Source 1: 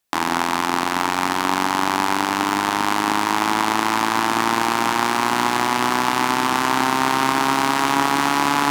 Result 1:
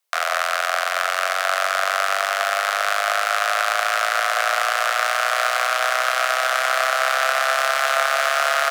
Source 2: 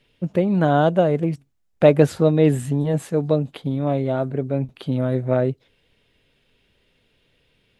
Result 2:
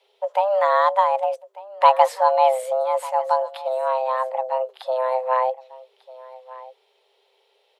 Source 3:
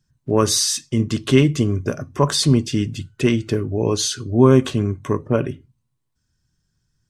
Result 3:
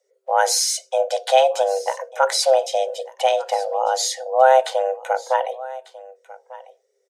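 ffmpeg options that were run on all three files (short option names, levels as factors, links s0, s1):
-af "afreqshift=390,aecho=1:1:1196:0.112,volume=0.891"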